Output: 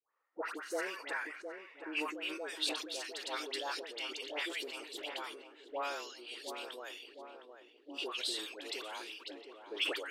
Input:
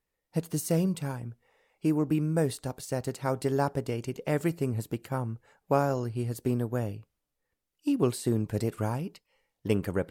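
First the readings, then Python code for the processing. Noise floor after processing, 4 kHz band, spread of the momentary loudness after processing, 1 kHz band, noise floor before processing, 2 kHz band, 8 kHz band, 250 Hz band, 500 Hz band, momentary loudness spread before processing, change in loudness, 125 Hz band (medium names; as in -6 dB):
-62 dBFS, +9.5 dB, 13 LU, -7.5 dB, -84 dBFS, +3.5 dB, -6.0 dB, -19.0 dB, -12.5 dB, 9 LU, -9.0 dB, under -40 dB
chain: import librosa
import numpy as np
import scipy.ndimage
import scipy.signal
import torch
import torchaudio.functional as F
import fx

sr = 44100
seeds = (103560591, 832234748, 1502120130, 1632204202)

p1 = scipy.signal.sosfilt(scipy.signal.butter(8, 290.0, 'highpass', fs=sr, output='sos'), x)
p2 = fx.filter_sweep_bandpass(p1, sr, from_hz=1200.0, to_hz=3400.0, start_s=0.17, end_s=2.31, q=5.1)
p3 = 10.0 ** (-39.5 / 20.0) * np.tanh(p2 / 10.0 ** (-39.5 / 20.0))
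p4 = p2 + (p3 * 10.0 ** (-8.0 / 20.0))
p5 = fx.dispersion(p4, sr, late='highs', ms=123.0, hz=1100.0)
p6 = p5 + fx.echo_filtered(p5, sr, ms=712, feedback_pct=70, hz=1100.0, wet_db=-7.0, dry=0)
p7 = fx.sustainer(p6, sr, db_per_s=63.0)
y = p7 * 10.0 ** (12.5 / 20.0)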